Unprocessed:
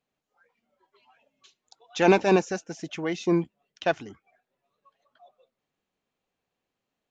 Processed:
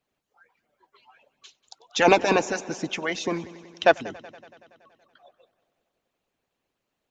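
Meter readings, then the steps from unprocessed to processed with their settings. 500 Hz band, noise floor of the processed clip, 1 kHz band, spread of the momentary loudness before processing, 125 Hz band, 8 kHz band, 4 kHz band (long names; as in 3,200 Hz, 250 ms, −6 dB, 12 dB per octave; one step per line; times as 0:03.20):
+1.5 dB, −82 dBFS, +4.5 dB, 16 LU, −5.0 dB, can't be measured, +6.5 dB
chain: echo machine with several playback heads 94 ms, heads first and second, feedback 65%, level −20 dB
harmonic and percussive parts rebalanced harmonic −17 dB
level +8 dB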